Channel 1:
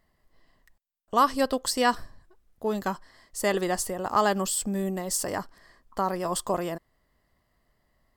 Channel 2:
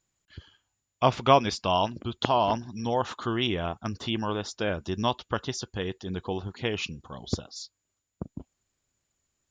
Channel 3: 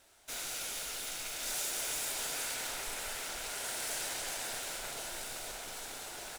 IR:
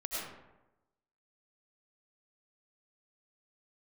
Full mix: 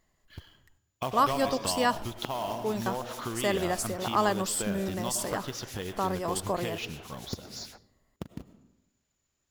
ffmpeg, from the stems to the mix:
-filter_complex "[0:a]volume=-3dB[a];[1:a]acrusher=bits=3:mode=log:mix=0:aa=0.000001,volume=-1.5dB,asplit=2[b][c];[c]volume=-16dB[d];[2:a]acrossover=split=1900[e][f];[e]aeval=exprs='val(0)*(1-1/2+1/2*cos(2*PI*6.6*n/s))':c=same[g];[f]aeval=exprs='val(0)*(1-1/2-1/2*cos(2*PI*6.6*n/s))':c=same[h];[g][h]amix=inputs=2:normalize=0,adelay=1400,volume=-1.5dB[i];[b][i]amix=inputs=2:normalize=0,equalizer=f=8.5k:w=5.5:g=-10.5,acompressor=threshold=-33dB:ratio=10,volume=0dB[j];[3:a]atrim=start_sample=2205[k];[d][k]afir=irnorm=-1:irlink=0[l];[a][j][l]amix=inputs=3:normalize=0"

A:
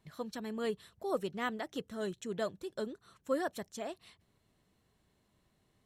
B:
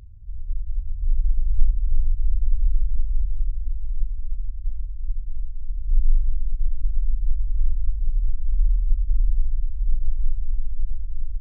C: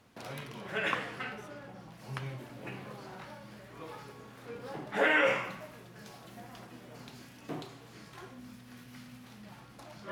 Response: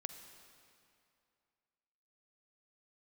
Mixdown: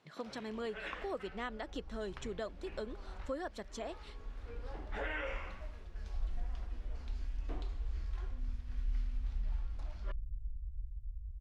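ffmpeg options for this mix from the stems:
-filter_complex "[0:a]volume=2dB,asplit=2[a][b];[1:a]highpass=58,adelay=250,volume=-6.5dB[c];[2:a]volume=-7.5dB[d];[b]apad=whole_len=513909[e];[c][e]sidechaincompress=threshold=-45dB:ratio=8:attack=16:release=678[f];[a][d]amix=inputs=2:normalize=0,highpass=210,lowpass=5.9k,acompressor=threshold=-40dB:ratio=2.5,volume=0dB[g];[f][g]amix=inputs=2:normalize=0"

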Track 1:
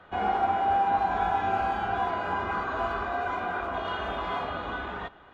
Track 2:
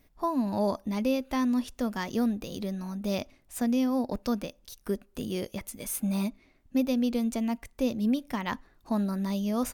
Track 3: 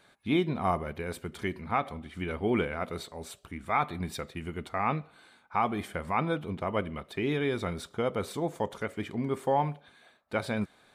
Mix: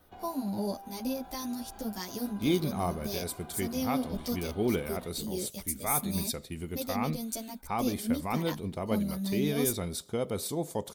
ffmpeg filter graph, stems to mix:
-filter_complex "[0:a]alimiter=level_in=2dB:limit=-24dB:level=0:latency=1,volume=-2dB,acompressor=threshold=-36dB:ratio=2,volume=-8.5dB[a];[1:a]acrossover=split=540[b][c];[b]aeval=exprs='val(0)*(1-0.5/2+0.5/2*cos(2*PI*1.7*n/s))':c=same[d];[c]aeval=exprs='val(0)*(1-0.5/2-0.5/2*cos(2*PI*1.7*n/s))':c=same[e];[d][e]amix=inputs=2:normalize=0,asplit=2[f][g];[g]adelay=11.1,afreqshift=-0.57[h];[f][h]amix=inputs=2:normalize=1,volume=1dB[i];[2:a]adelay=2150,volume=0dB[j];[a][i][j]amix=inputs=3:normalize=0,equalizer=f=1.4k:t=o:w=1.7:g=-8.5,aexciter=amount=2.8:drive=4.8:freq=4k"

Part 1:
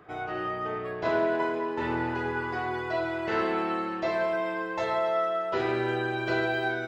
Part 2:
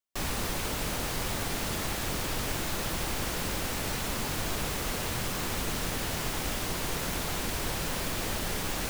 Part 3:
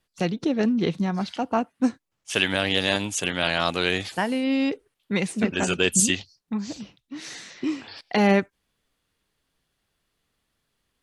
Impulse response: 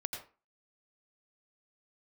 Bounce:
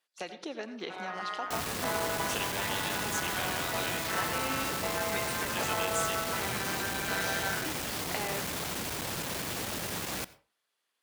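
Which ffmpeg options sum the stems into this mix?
-filter_complex "[0:a]highpass=810,tremolo=f=190:d=0.919,adelay=800,volume=1dB[a];[1:a]volume=35.5dB,asoftclip=hard,volume=-35.5dB,highpass=94,adelay=1350,volume=1.5dB,asplit=2[b][c];[c]volume=-13dB[d];[2:a]highpass=570,acompressor=threshold=-30dB:ratio=6,volume=-8.5dB,asplit=2[e][f];[f]volume=-3dB[g];[3:a]atrim=start_sample=2205[h];[d][g]amix=inputs=2:normalize=0[i];[i][h]afir=irnorm=-1:irlink=0[j];[a][b][e][j]amix=inputs=4:normalize=0"

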